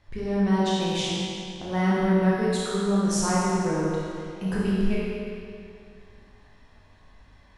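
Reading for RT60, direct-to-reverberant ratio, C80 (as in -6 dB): 2.4 s, -7.0 dB, -1.5 dB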